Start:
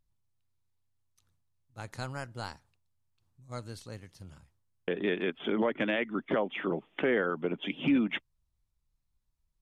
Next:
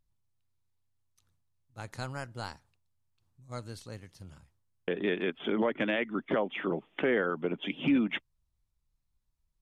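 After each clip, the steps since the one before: nothing audible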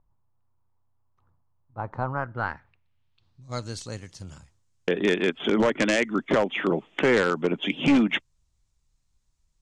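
one-sided fold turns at -22.5 dBFS; low-pass sweep 1000 Hz -> 7200 Hz, 2.04–3.79; gain +7.5 dB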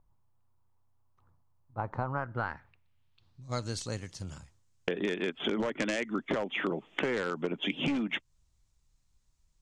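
compressor 8:1, threshold -28 dBFS, peak gain reduction 12.5 dB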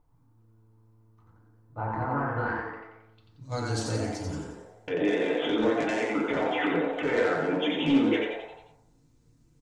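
limiter -25 dBFS, peak gain reduction 9.5 dB; on a send: frequency-shifting echo 89 ms, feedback 50%, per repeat +110 Hz, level -4 dB; on the sum: FDN reverb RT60 0.82 s, low-frequency decay 0.7×, high-frequency decay 0.25×, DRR -4.5 dB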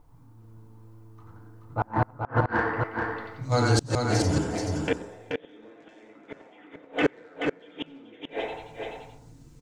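flipped gate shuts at -19 dBFS, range -36 dB; in parallel at -9 dB: soft clip -34.5 dBFS, distortion -7 dB; on the sum: echo 0.43 s -4.5 dB; gain +7.5 dB

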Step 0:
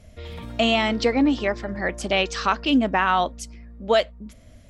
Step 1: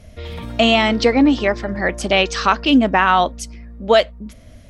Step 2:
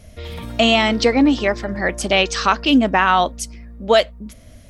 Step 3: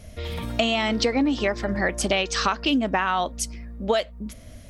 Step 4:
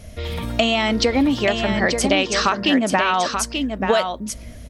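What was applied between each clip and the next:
notch 7300 Hz, Q 16; gain +6 dB
high shelf 7300 Hz +9 dB; gain -1 dB
compressor 6:1, threshold -19 dBFS, peak gain reduction 10 dB
echo 0.884 s -6 dB; gain +4 dB

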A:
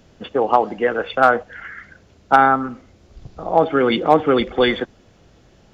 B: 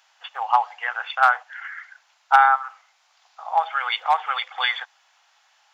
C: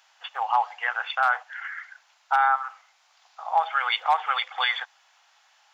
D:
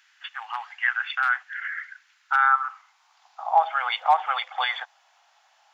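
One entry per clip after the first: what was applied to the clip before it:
elliptic high-pass 820 Hz, stop band 60 dB
limiter -11.5 dBFS, peak gain reduction 9 dB
high-pass sweep 1700 Hz -> 650 Hz, 2.11–3.61; gain -3 dB

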